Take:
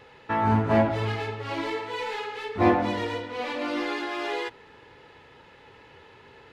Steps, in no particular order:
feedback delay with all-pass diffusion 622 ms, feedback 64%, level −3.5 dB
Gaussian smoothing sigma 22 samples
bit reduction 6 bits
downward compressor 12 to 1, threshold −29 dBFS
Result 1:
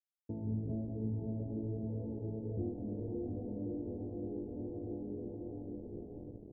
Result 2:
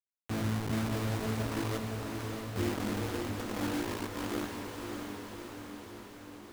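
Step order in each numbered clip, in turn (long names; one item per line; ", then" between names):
feedback delay with all-pass diffusion, then downward compressor, then bit reduction, then Gaussian smoothing
Gaussian smoothing, then downward compressor, then bit reduction, then feedback delay with all-pass diffusion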